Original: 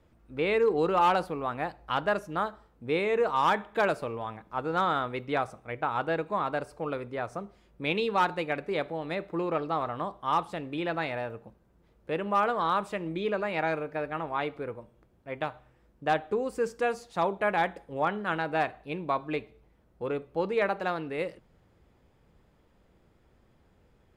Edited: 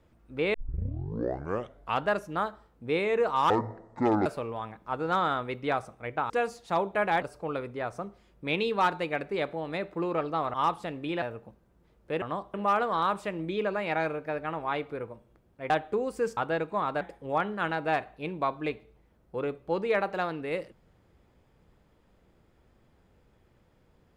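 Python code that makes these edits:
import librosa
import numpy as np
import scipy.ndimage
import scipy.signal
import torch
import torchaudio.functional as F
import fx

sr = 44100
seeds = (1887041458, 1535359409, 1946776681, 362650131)

y = fx.edit(x, sr, fx.tape_start(start_s=0.54, length_s=1.52),
    fx.speed_span(start_s=3.5, length_s=0.41, speed=0.54),
    fx.swap(start_s=5.95, length_s=0.64, other_s=16.76, other_length_s=0.92),
    fx.move(start_s=9.91, length_s=0.32, to_s=12.21),
    fx.cut(start_s=10.91, length_s=0.3),
    fx.cut(start_s=15.37, length_s=0.72), tone=tone)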